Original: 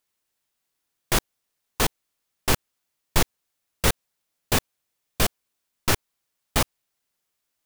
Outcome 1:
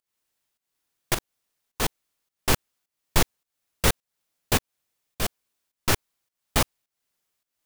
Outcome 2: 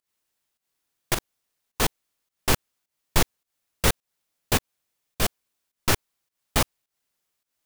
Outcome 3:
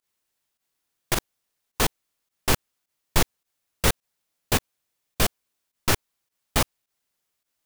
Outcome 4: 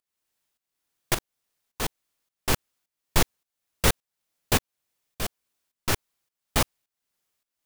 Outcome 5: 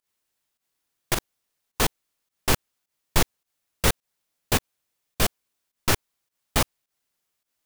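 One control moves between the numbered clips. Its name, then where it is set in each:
fake sidechain pumping, release: 291, 173, 75, 505, 110 milliseconds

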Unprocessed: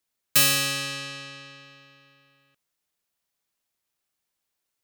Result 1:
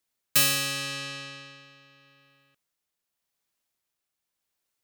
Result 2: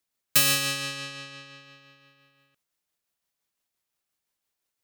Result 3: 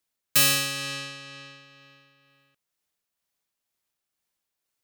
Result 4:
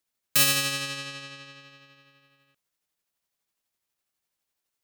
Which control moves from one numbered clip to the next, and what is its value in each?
amplitude tremolo, speed: 0.85, 5.8, 2.1, 12 Hertz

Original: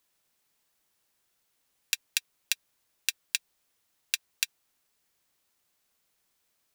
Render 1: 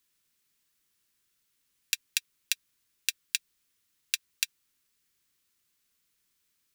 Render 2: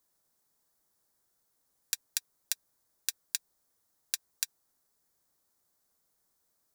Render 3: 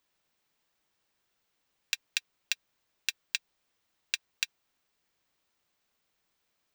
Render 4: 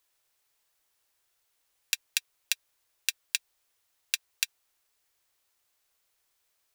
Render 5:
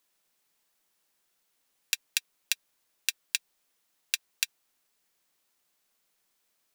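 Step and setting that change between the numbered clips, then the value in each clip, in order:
parametric band, centre frequency: 700, 2,700, 12,000, 200, 77 Hertz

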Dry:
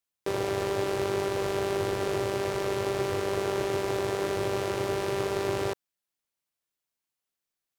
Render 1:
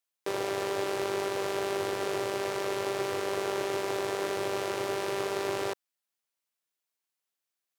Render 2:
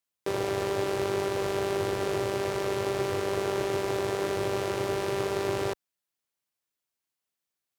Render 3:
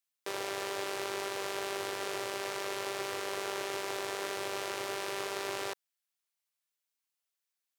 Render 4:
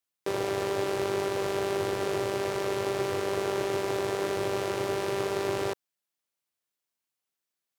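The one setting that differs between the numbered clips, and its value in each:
high-pass filter, corner frequency: 390, 47, 1,300, 130 Hertz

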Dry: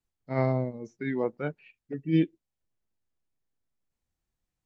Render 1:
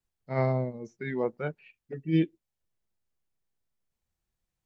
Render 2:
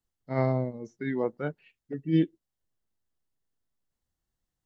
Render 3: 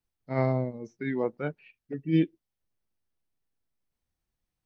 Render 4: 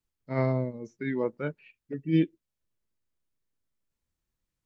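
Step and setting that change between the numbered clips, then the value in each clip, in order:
notch filter, centre frequency: 280, 2,400, 7,100, 750 Hertz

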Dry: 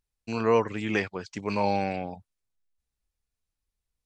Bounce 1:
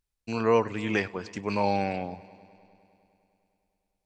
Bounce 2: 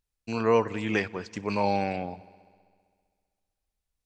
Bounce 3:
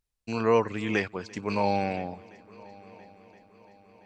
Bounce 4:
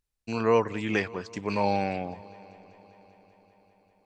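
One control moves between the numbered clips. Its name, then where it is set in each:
echo machine with several playback heads, delay time: 101, 65, 340, 196 milliseconds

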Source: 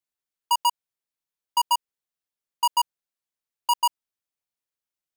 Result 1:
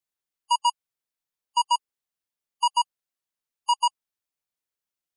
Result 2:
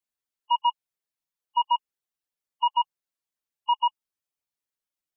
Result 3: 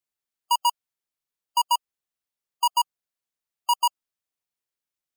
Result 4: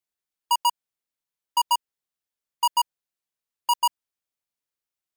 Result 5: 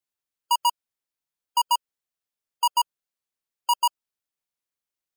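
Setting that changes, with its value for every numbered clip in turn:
gate on every frequency bin, under each frame's peak: −20, −10, −35, −60, −45 decibels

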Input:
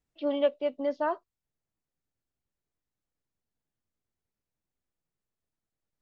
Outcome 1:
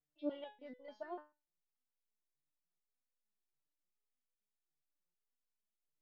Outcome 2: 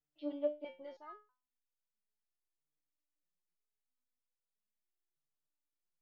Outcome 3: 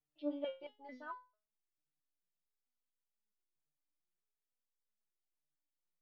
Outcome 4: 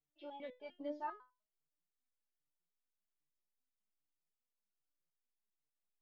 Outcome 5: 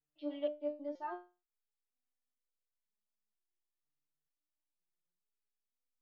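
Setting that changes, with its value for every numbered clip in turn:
step-sequenced resonator, speed: 6.8, 3.1, 4.5, 10, 2.1 Hertz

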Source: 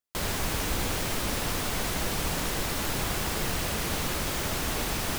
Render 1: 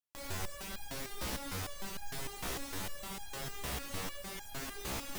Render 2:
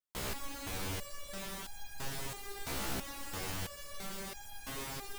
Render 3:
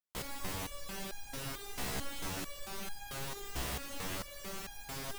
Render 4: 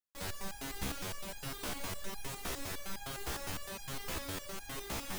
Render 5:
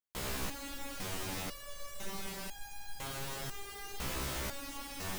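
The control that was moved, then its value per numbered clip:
step-sequenced resonator, speed: 6.6, 3, 4.5, 9.8, 2 Hertz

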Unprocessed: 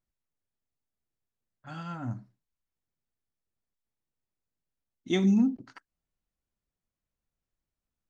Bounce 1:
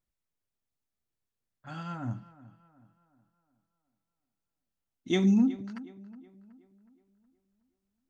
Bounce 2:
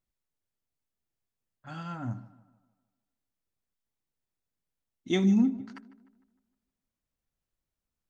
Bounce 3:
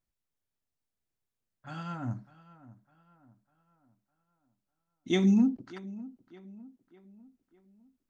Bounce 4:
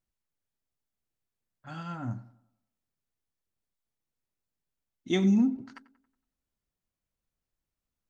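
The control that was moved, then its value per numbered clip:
tape delay, delay time: 369, 153, 603, 94 milliseconds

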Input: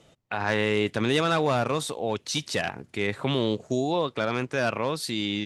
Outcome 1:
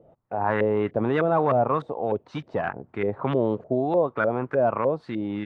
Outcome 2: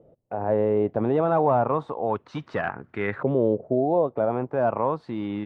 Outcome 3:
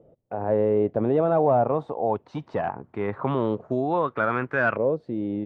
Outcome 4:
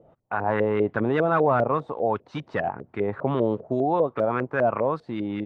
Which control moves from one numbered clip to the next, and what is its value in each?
auto-filter low-pass, speed: 3.3, 0.31, 0.21, 5 Hertz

